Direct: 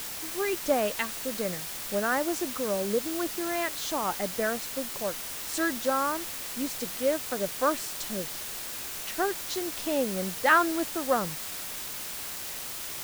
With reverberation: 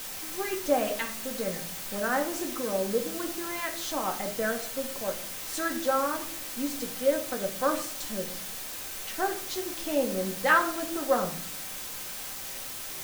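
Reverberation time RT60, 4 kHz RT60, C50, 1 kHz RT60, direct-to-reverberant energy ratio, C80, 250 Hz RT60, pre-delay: 0.55 s, 0.35 s, 11.0 dB, 0.50 s, 2.0 dB, 15.0 dB, 0.85 s, 4 ms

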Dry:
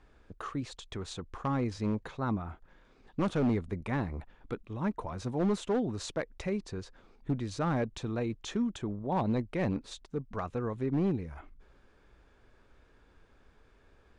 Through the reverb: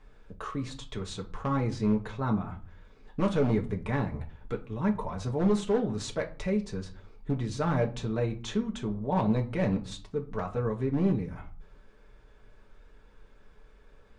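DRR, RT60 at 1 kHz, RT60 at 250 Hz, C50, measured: 1.0 dB, 0.40 s, 0.60 s, 14.5 dB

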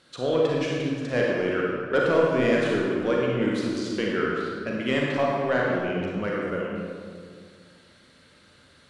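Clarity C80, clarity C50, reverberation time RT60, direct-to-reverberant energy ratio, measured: 0.5 dB, -1.5 dB, 2.0 s, -3.5 dB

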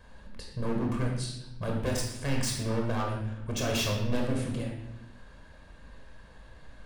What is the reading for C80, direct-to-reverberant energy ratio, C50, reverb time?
6.0 dB, 0.0 dB, 3.5 dB, 0.80 s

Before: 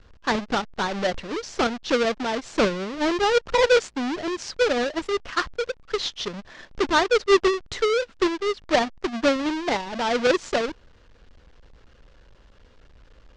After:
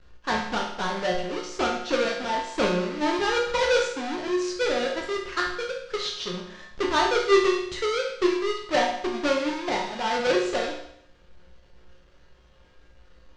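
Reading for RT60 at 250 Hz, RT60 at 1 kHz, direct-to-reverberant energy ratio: 0.70 s, 0.70 s, -2.0 dB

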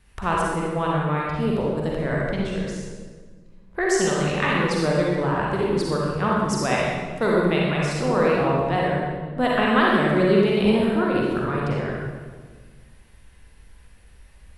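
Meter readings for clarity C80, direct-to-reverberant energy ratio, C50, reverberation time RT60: 0.5 dB, -4.5 dB, -2.5 dB, 1.5 s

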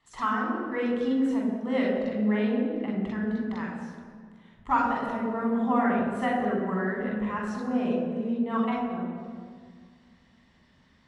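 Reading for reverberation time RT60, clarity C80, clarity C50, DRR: 1.8 s, 2.5 dB, 1.0 dB, -3.5 dB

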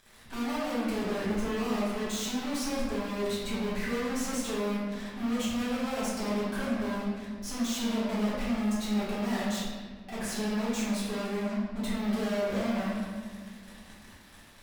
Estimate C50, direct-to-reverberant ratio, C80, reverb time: -1.5 dB, -9.5 dB, 1.5 dB, 1.7 s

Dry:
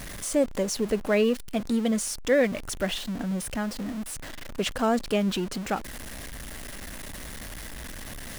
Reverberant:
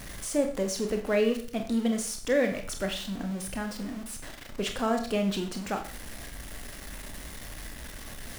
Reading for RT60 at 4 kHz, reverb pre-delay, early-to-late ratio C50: 0.45 s, 21 ms, 9.5 dB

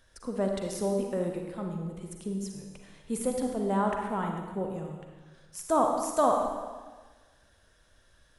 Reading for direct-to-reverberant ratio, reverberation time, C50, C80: 2.0 dB, 1.4 s, 3.0 dB, 5.0 dB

